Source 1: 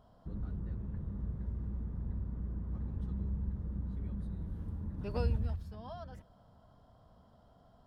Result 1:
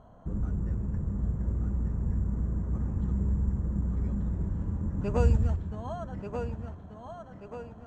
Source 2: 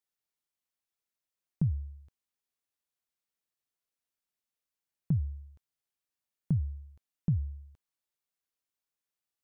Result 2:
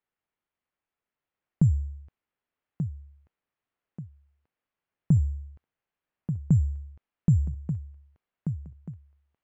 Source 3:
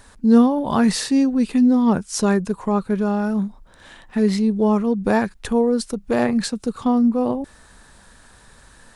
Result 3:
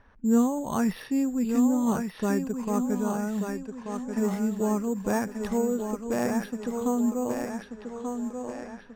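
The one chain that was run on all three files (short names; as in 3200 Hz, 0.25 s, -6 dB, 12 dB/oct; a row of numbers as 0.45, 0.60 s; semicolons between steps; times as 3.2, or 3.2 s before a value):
thinning echo 1.185 s, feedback 53%, high-pass 190 Hz, level -5 dB; careless resampling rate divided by 6×, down filtered, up hold; low-pass opened by the level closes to 2600 Hz, open at -17.5 dBFS; normalise peaks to -12 dBFS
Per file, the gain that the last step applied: +8.5, +7.5, -8.5 dB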